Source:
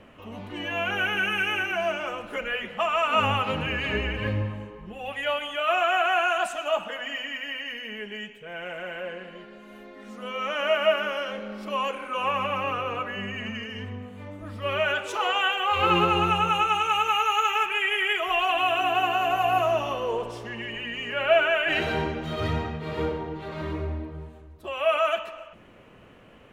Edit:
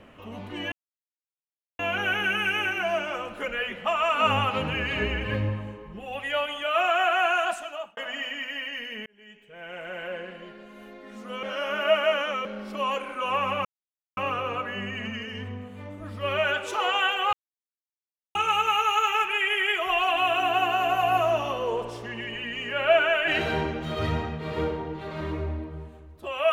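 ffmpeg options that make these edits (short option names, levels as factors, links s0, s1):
-filter_complex "[0:a]asplit=9[s0][s1][s2][s3][s4][s5][s6][s7][s8];[s0]atrim=end=0.72,asetpts=PTS-STARTPTS,afade=t=out:st=0.716:d=0.004:c=hsin,apad=pad_dur=1.07[s9];[s1]atrim=start=0.72:end=6.9,asetpts=PTS-STARTPTS,afade=t=in:d=0.004:c=hsin,afade=t=out:st=5.63:d=0.55[s10];[s2]atrim=start=6.9:end=7.99,asetpts=PTS-STARTPTS,afade=t=in:d=0.004:c=hsin,afade=t=out:st=1.086:d=0.004:c=hsin[s11];[s3]atrim=start=7.99:end=10.362,asetpts=PTS-STARTPTS,afade=t=in:d=0.98[s12];[s4]atrim=start=10.358:end=11.382,asetpts=PTS-STARTPTS,areverse[s13];[s5]atrim=start=11.378:end=12.58,asetpts=PTS-STARTPTS,afade=t=out:st=1.198:d=0.004:c=hsin,apad=pad_dur=0.52[s14];[s6]atrim=start=12.58:end=15.74,asetpts=PTS-STARTPTS,afade=t=in:d=0.004:c=hsin,afade=t=out:st=3.156:d=0.004:c=hsin[s15];[s7]atrim=start=15.74:end=16.76,asetpts=PTS-STARTPTS,volume=0[s16];[s8]atrim=start=16.76,asetpts=PTS-STARTPTS,afade=t=in:d=0.004:c=hsin[s17];[s9][s10][s11][s12]concat=n=4:v=0:a=1[s18];[s18][s13]acrossfade=d=0.004:c1=hsin:c2=hsin[s19];[s14][s15][s16][s17]concat=n=4:v=0:a=1[s20];[s19][s20]acrossfade=d=0.004:c1=hsin:c2=hsin"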